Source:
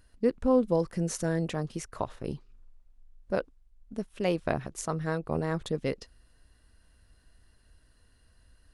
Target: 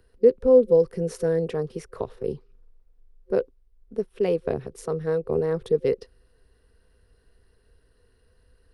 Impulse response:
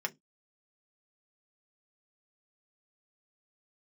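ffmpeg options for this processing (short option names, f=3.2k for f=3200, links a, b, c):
-filter_complex "[0:a]superequalizer=7b=3.98:15b=0.501,acrossover=split=120|670|2200[a][b][c][d];[c]alimiter=level_in=2.5dB:limit=-24dB:level=0:latency=1:release=437,volume=-2.5dB[e];[d]tremolo=f=260:d=0.824[f];[a][b][e][f]amix=inputs=4:normalize=0"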